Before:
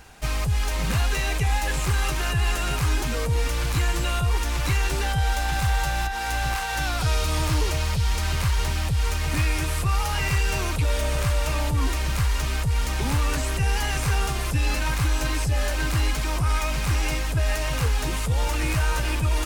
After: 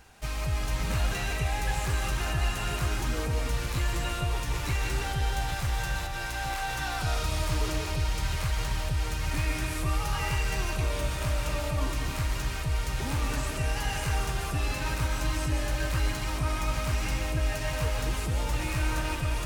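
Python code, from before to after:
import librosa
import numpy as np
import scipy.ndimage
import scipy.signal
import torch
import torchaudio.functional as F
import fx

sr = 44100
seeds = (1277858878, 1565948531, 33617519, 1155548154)

y = fx.rev_freeverb(x, sr, rt60_s=1.1, hf_ratio=0.45, predelay_ms=105, drr_db=2.0)
y = y * 10.0 ** (-7.0 / 20.0)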